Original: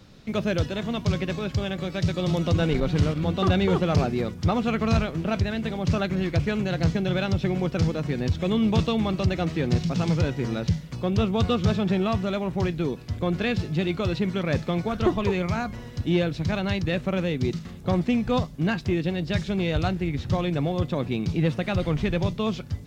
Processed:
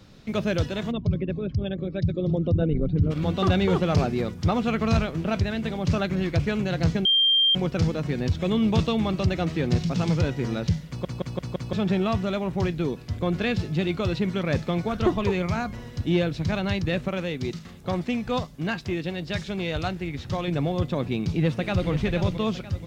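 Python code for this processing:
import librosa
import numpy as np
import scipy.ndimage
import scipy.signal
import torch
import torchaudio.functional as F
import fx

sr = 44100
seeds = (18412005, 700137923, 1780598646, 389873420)

y = fx.envelope_sharpen(x, sr, power=2.0, at=(0.9, 3.1), fade=0.02)
y = fx.low_shelf(y, sr, hz=400.0, db=-6.0, at=(17.08, 20.48))
y = fx.echo_throw(y, sr, start_s=21.09, length_s=0.8, ms=480, feedback_pct=45, wet_db=-9.0)
y = fx.edit(y, sr, fx.bleep(start_s=7.05, length_s=0.5, hz=3180.0, db=-16.5),
    fx.stutter_over(start_s=10.88, slice_s=0.17, count=5), tone=tone)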